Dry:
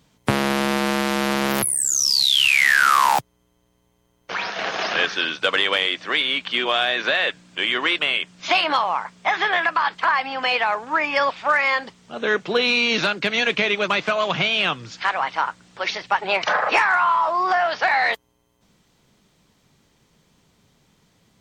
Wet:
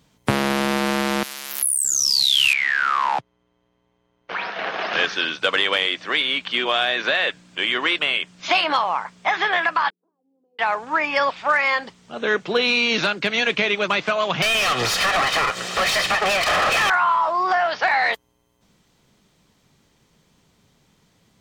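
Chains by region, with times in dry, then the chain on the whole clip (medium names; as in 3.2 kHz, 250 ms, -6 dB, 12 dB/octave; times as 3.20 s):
1.23–1.85 s: companding laws mixed up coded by A + pre-emphasis filter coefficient 0.97
2.53–4.93 s: bass shelf 110 Hz -10 dB + compression 2:1, threshold -19 dBFS + low-pass 3.1 kHz
9.90–10.59 s: elliptic band-pass 180–420 Hz, stop band 70 dB + differentiator
14.42–16.90 s: comb filter that takes the minimum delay 1.6 ms + compression 10:1, threshold -35 dBFS + overdrive pedal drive 37 dB, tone 4.4 kHz, clips at -10.5 dBFS
whole clip: none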